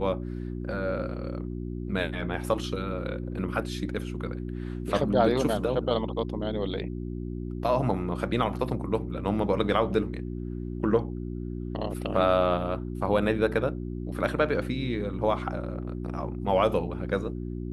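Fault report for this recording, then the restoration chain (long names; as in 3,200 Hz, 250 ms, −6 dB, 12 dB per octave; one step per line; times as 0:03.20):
mains hum 60 Hz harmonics 6 −34 dBFS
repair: hum removal 60 Hz, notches 6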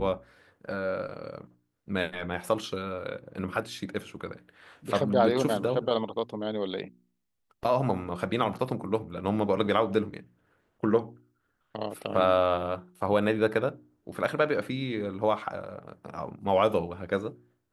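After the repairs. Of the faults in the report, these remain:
none of them is left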